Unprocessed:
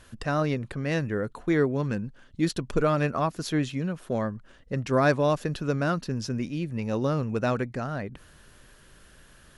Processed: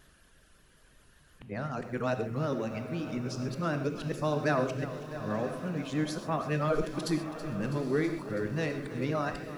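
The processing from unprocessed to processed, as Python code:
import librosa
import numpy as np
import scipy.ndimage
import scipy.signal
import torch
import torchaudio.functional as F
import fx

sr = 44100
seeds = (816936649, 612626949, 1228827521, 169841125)

p1 = np.flip(x).copy()
p2 = fx.dereverb_blind(p1, sr, rt60_s=0.88)
p3 = fx.level_steps(p2, sr, step_db=17)
p4 = p2 + (p3 * 10.0 ** (-1.5 / 20.0))
p5 = fx.vibrato(p4, sr, rate_hz=5.4, depth_cents=52.0)
p6 = p5 + fx.echo_diffused(p5, sr, ms=902, feedback_pct=42, wet_db=-12.5, dry=0)
p7 = fx.rev_gated(p6, sr, seeds[0], gate_ms=160, shape='flat', drr_db=7.5)
p8 = fx.echo_crushed(p7, sr, ms=326, feedback_pct=80, bits=8, wet_db=-14.5)
y = p8 * 10.0 ** (-7.5 / 20.0)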